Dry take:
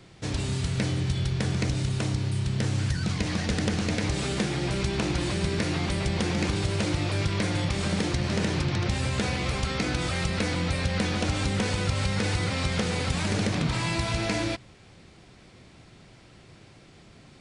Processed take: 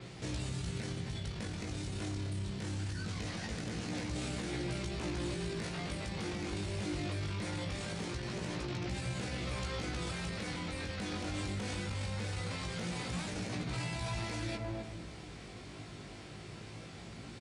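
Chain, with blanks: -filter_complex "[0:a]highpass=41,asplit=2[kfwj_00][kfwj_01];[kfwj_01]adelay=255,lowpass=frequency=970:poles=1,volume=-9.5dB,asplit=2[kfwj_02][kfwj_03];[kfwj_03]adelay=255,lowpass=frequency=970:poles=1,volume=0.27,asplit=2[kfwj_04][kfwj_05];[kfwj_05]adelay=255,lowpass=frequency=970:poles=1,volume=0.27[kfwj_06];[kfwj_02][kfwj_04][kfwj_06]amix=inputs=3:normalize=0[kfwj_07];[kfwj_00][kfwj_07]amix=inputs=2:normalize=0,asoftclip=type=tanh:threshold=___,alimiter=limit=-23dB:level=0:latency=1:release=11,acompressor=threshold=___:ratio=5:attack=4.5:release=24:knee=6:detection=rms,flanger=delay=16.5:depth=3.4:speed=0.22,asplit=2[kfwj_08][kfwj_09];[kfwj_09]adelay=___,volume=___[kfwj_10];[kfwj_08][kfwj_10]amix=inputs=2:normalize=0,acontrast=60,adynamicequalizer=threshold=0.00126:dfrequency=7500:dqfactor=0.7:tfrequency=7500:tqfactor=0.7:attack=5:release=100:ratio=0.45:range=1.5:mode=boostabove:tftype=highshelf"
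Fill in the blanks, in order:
-14.5dB, -42dB, 17, -13.5dB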